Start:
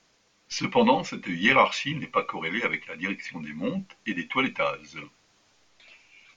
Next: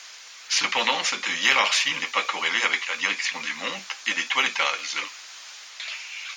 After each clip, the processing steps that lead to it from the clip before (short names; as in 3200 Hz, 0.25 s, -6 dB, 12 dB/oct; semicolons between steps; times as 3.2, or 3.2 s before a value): HPF 1400 Hz 12 dB/oct; spectral compressor 2:1; gain +4 dB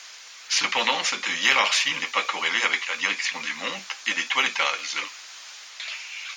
nothing audible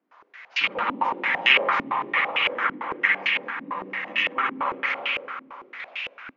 spring tank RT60 3.1 s, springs 52/57 ms, chirp 60 ms, DRR -3.5 dB; stepped low-pass 8.9 Hz 270–2700 Hz; gain -7 dB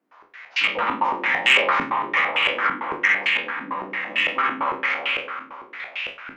spectral trails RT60 0.32 s; soft clip -6.5 dBFS, distortion -23 dB; gain +1.5 dB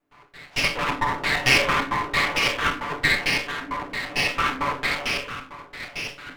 minimum comb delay 6.9 ms